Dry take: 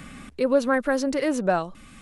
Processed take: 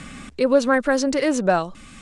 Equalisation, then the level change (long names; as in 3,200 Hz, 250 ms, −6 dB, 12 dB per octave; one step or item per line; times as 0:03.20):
low-pass filter 8,700 Hz 24 dB per octave
high-shelf EQ 4,300 Hz +6 dB
+3.5 dB